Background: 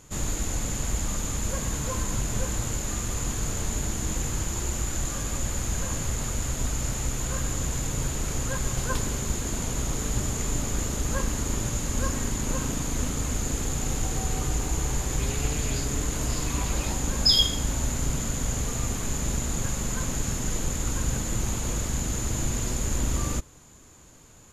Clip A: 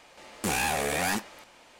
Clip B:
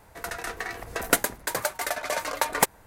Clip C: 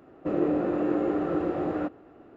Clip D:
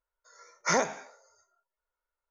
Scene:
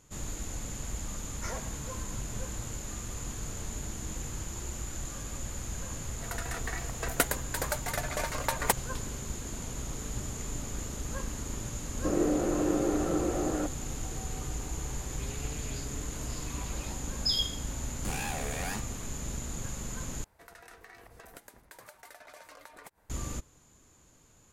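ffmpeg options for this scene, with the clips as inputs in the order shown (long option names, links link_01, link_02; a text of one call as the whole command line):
ffmpeg -i bed.wav -i cue0.wav -i cue1.wav -i cue2.wav -i cue3.wav -filter_complex "[2:a]asplit=2[link_01][link_02];[0:a]volume=-9dB[link_03];[4:a]asoftclip=type=tanh:threshold=-20.5dB[link_04];[link_02]acompressor=threshold=-34dB:ratio=6:attack=3.2:release=140:knee=1:detection=peak[link_05];[link_03]asplit=2[link_06][link_07];[link_06]atrim=end=20.244[link_08];[link_05]atrim=end=2.86,asetpts=PTS-STARTPTS,volume=-13dB[link_09];[link_07]atrim=start=23.096[link_10];[link_04]atrim=end=2.3,asetpts=PTS-STARTPTS,volume=-12.5dB,afade=type=in:duration=0.004:curve=hsin,afade=type=out:start_time=2.296:duration=0.004:curve=hsin,adelay=760[link_11];[link_01]atrim=end=2.86,asetpts=PTS-STARTPTS,volume=-5.5dB,afade=type=in:duration=0.004:curve=hsin,afade=type=out:start_time=2.856:duration=0.004:curve=hsin,adelay=6070[link_12];[3:a]atrim=end=2.36,asetpts=PTS-STARTPTS,volume=-2.5dB,afade=type=in:duration=0.004:curve=hsin,afade=type=out:start_time=2.356:duration=0.004:curve=hsin,adelay=11790[link_13];[1:a]atrim=end=1.79,asetpts=PTS-STARTPTS,volume=-9.5dB,afade=type=in:duration=0.004:curve=hsin,afade=type=out:start_time=1.786:duration=0.004:curve=hsin,adelay=17610[link_14];[link_08][link_09]acrossfade=duration=0.004:curve1=hsin:curve2=hsin[link_15];[link_15][link_10]acrossfade=duration=0.004:curve1=hsin:curve2=hsin[link_16];[link_16][link_11][link_12][link_13][link_14]amix=inputs=5:normalize=0" out.wav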